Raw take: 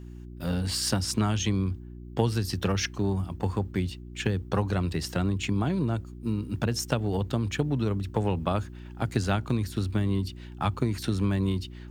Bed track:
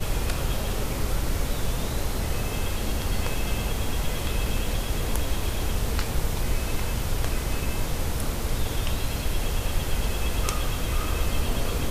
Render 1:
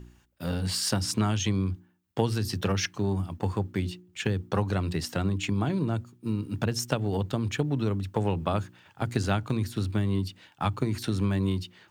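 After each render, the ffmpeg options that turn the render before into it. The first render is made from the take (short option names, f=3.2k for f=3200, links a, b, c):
-af "bandreject=f=60:t=h:w=4,bandreject=f=120:t=h:w=4,bandreject=f=180:t=h:w=4,bandreject=f=240:t=h:w=4,bandreject=f=300:t=h:w=4,bandreject=f=360:t=h:w=4"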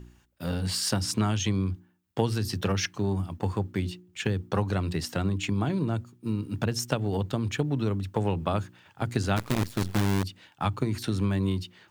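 -filter_complex "[0:a]asplit=3[a][b][c];[a]afade=t=out:st=9.36:d=0.02[d];[b]acrusher=bits=5:dc=4:mix=0:aa=0.000001,afade=t=in:st=9.36:d=0.02,afade=t=out:st=10.22:d=0.02[e];[c]afade=t=in:st=10.22:d=0.02[f];[d][e][f]amix=inputs=3:normalize=0"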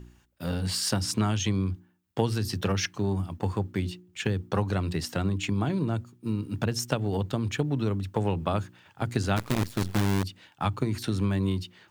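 -af anull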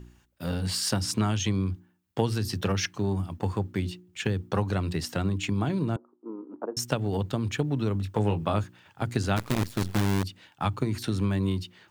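-filter_complex "[0:a]asettb=1/sr,asplit=3[a][b][c];[a]atrim=end=5.964[d];[b]atrim=start=5.96:end=6.77,asetpts=PTS-STARTPTS,afade=t=in:d=0.004:c=qsin,afade=t=out:st=0.806:d=0.004:c=qsin,asuperpass=centerf=590:order=8:qfactor=0.66[e];[c]atrim=start=6.766[f];[d][e]acrossfade=d=0.004:c1=hsin:c2=qsin[g];[g][f]acrossfade=d=0.004:c1=qsin:c2=hsin,asettb=1/sr,asplit=3[h][i][j];[h]atrim=end=7.934[k];[i]atrim=start=7.93:end=8.64,asetpts=PTS-STARTPTS,afade=t=in:d=0.004:c=qsin,afade=t=out:st=0.706:d=0.004:c=qsin,asplit=2[l][m];[m]adelay=19,volume=-8dB[n];[l][n]amix=inputs=2:normalize=0,atrim=end_sample=31311[o];[j]atrim=start=8.636[p];[k][o]acrossfade=d=0.004:c1=hsin:c2=qsin[q];[q][p]acrossfade=d=0.004:c1=qsin:c2=hsin"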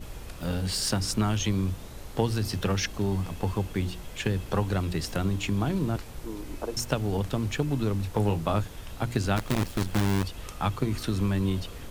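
-filter_complex "[1:a]volume=-14.5dB[a];[0:a][a]amix=inputs=2:normalize=0"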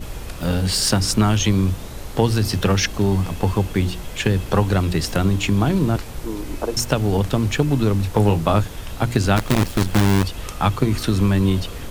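-af "volume=9dB,alimiter=limit=-3dB:level=0:latency=1"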